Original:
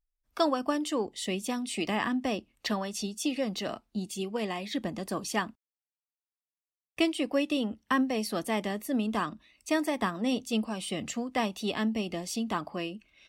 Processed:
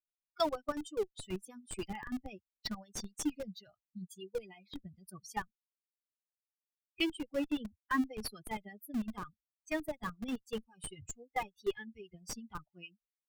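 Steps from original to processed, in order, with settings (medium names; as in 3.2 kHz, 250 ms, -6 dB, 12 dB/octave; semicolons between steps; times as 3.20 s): expander on every frequency bin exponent 3; 10.52–12.14 s: comb 2.4 ms, depth 78%; harmonic tremolo 8.9 Hz, depth 70%, crossover 1.1 kHz; in parallel at -3 dB: Schmitt trigger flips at -38.5 dBFS; on the sum: trim +1 dB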